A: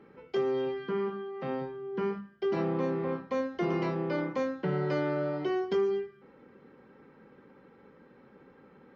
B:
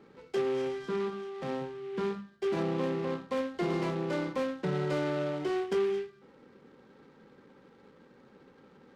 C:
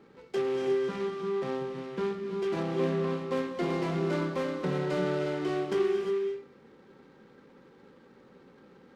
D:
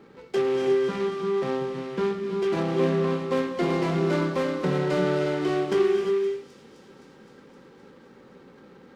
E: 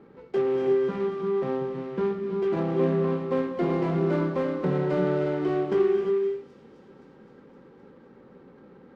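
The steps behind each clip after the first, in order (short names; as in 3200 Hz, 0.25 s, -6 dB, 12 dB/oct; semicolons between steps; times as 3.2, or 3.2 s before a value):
noise-modulated delay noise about 2000 Hz, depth 0.036 ms; gain -1 dB
non-linear reverb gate 0.38 s rising, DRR 4 dB
thin delay 0.259 s, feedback 75%, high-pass 4700 Hz, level -11 dB; gain +5.5 dB
LPF 1100 Hz 6 dB/oct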